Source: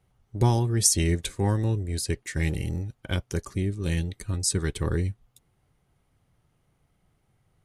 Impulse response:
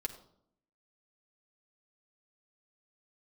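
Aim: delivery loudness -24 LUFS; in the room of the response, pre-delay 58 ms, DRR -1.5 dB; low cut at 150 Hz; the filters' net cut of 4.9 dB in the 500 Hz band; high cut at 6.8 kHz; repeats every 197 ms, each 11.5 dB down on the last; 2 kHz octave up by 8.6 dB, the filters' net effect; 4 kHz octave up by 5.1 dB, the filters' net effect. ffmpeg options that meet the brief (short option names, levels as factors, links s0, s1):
-filter_complex "[0:a]highpass=150,lowpass=6800,equalizer=f=500:t=o:g=-7.5,equalizer=f=2000:t=o:g=9,equalizer=f=4000:t=o:g=6,aecho=1:1:197|394|591:0.266|0.0718|0.0194,asplit=2[s0][s1];[1:a]atrim=start_sample=2205,adelay=58[s2];[s1][s2]afir=irnorm=-1:irlink=0,volume=1.12[s3];[s0][s3]amix=inputs=2:normalize=0,volume=1.06"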